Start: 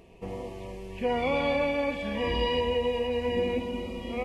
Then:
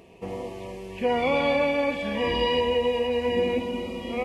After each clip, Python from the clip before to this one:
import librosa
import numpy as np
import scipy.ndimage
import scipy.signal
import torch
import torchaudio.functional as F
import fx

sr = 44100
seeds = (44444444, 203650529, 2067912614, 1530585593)

y = fx.highpass(x, sr, hz=130.0, slope=6)
y = y * librosa.db_to_amplitude(4.0)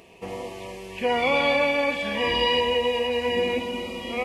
y = fx.tilt_shelf(x, sr, db=-4.5, hz=750.0)
y = y * librosa.db_to_amplitude(1.5)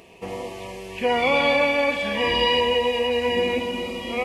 y = x + 10.0 ** (-17.0 / 20.0) * np.pad(x, (int(343 * sr / 1000.0), 0))[:len(x)]
y = y * librosa.db_to_amplitude(2.0)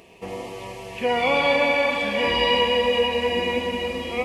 y = fx.rev_freeverb(x, sr, rt60_s=4.2, hf_ratio=0.75, predelay_ms=65, drr_db=4.5)
y = y * librosa.db_to_amplitude(-1.0)